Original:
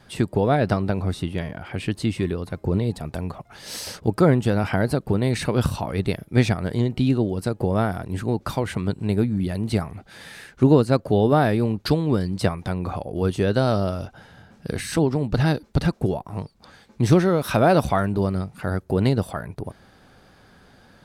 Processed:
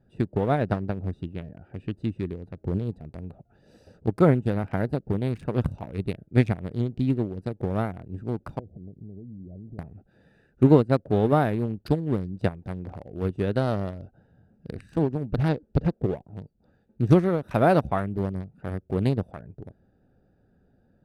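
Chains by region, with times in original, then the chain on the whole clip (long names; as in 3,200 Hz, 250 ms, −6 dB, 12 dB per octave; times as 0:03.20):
0:08.59–0:09.79: Butterworth low-pass 760 Hz 96 dB per octave + downward compressor 20 to 1, threshold −28 dBFS
0:15.48–0:16.16: low-pass filter 5,500 Hz + dynamic equaliser 480 Hz, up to +6 dB, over −39 dBFS, Q 2.7 + upward compression, threshold −41 dBFS
whole clip: adaptive Wiener filter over 41 samples; dynamic equaliser 4,900 Hz, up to −6 dB, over −49 dBFS, Q 1.3; expander for the loud parts 1.5 to 1, over −28 dBFS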